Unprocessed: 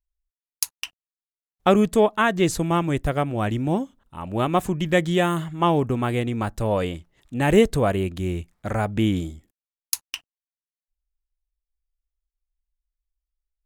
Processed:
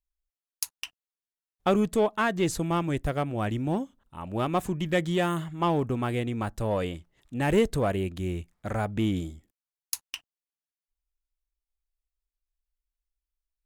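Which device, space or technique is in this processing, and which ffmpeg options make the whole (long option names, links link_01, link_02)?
parallel distortion: -filter_complex "[0:a]asplit=2[link_01][link_02];[link_02]asoftclip=type=hard:threshold=-18dB,volume=-5dB[link_03];[link_01][link_03]amix=inputs=2:normalize=0,volume=-8.5dB"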